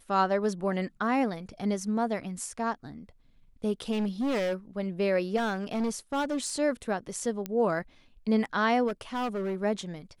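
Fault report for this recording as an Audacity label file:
3.910000	4.550000	clipped -25.5 dBFS
5.360000	6.500000	clipped -25.5 dBFS
7.460000	7.460000	pop -18 dBFS
8.870000	9.630000	clipped -27.5 dBFS

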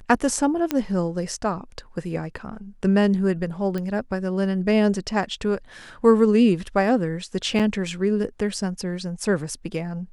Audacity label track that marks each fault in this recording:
0.710000	0.710000	pop -8 dBFS
3.780000	3.780000	pop -17 dBFS
7.590000	7.600000	gap 6.4 ms

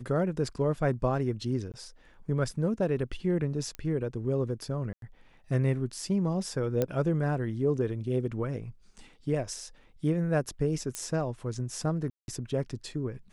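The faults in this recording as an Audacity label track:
1.720000	1.740000	gap 18 ms
3.750000	3.750000	pop -22 dBFS
4.930000	5.020000	gap 92 ms
6.820000	6.820000	pop -14 dBFS
10.950000	10.950000	pop -17 dBFS
12.100000	12.280000	gap 0.181 s

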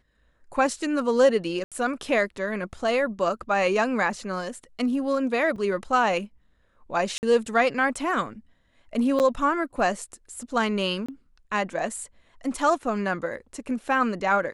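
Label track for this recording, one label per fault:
1.640000	1.720000	gap 77 ms
5.560000	5.560000	gap 4.5 ms
7.180000	7.230000	gap 49 ms
9.190000	9.200000	gap 8.7 ms
11.060000	11.090000	gap 25 ms

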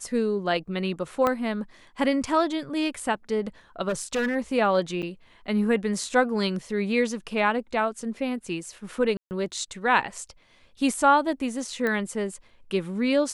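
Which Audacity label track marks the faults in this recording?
1.270000	1.270000	pop -11 dBFS
3.880000	4.360000	clipped -22 dBFS
5.020000	5.030000	gap 7.8 ms
9.170000	9.310000	gap 0.139 s
11.870000	11.870000	pop -15 dBFS

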